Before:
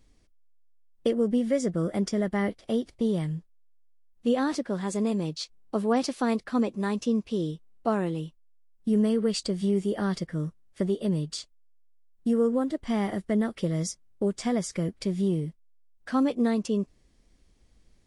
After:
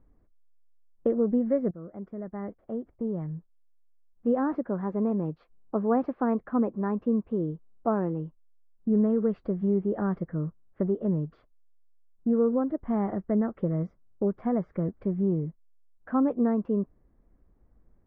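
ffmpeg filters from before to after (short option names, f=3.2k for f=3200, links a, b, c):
-filter_complex "[0:a]asplit=2[a][b];[a]atrim=end=1.71,asetpts=PTS-STARTPTS,afade=t=out:st=1.706:d=0.004:c=hsin:silence=0.158489[c];[b]atrim=start=1.71,asetpts=PTS-STARTPTS,afade=t=in:d=2.8:silence=0.158489[d];[c][d]concat=n=2:v=0:a=1,lowpass=f=1.4k:w=0.5412,lowpass=f=1.4k:w=1.3066"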